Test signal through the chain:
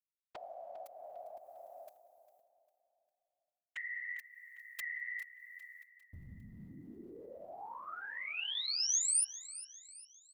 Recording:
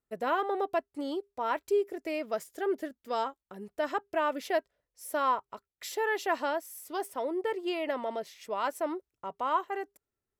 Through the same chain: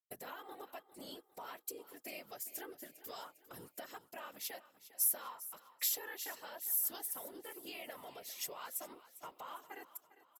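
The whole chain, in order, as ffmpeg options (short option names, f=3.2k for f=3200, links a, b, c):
-af "agate=range=-33dB:threshold=-53dB:ratio=3:detection=peak,equalizer=f=13k:t=o:w=0.34:g=7.5,acompressor=threshold=-46dB:ratio=6,afftfilt=real='hypot(re,im)*cos(2*PI*random(0))':imag='hypot(re,im)*sin(2*PI*random(1))':win_size=512:overlap=0.75,crystalizer=i=9.5:c=0,aecho=1:1:402|804|1206|1608:0.158|0.0713|0.0321|0.0144"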